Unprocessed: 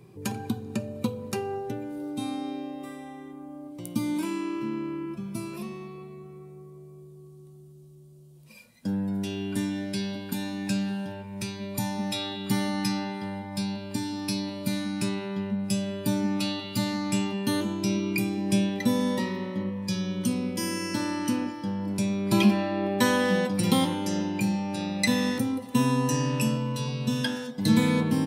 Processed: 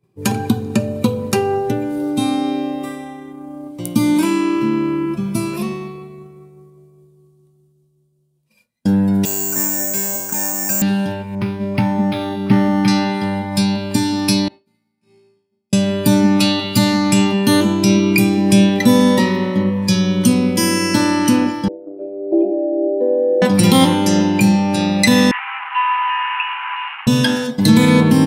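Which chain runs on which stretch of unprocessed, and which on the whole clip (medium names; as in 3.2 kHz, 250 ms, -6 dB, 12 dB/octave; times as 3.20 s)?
9.25–10.82 s: three-band isolator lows -15 dB, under 490 Hz, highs -24 dB, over 2 kHz + careless resampling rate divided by 6×, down filtered, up zero stuff
11.35–12.88 s: peaking EQ 4.1 kHz -12 dB 2 oct + decimation joined by straight lines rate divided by 6×
14.48–15.73 s: low-pass 2.6 kHz 6 dB/octave + bass shelf 150 Hz -10.5 dB + feedback comb 56 Hz, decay 1.8 s, mix 100%
21.68–23.42 s: elliptic band-pass 310–660 Hz + distance through air 350 m
25.31–27.07 s: one-bit delta coder 64 kbps, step -27 dBFS + Chebyshev band-pass 820–2900 Hz, order 5 + doubling 13 ms -7.5 dB
whole clip: expander -36 dBFS; loudness maximiser +15 dB; trim -1 dB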